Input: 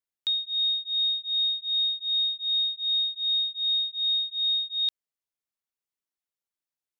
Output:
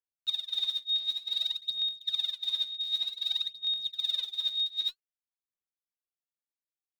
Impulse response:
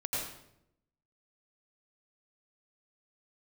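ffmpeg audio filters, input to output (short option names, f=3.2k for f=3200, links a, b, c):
-af "aphaser=in_gain=1:out_gain=1:delay=3.5:decay=0.77:speed=0.54:type=sinusoidal,agate=range=-13dB:threshold=-32dB:ratio=16:detection=peak,acompressor=threshold=-26dB:ratio=2,volume=-5dB"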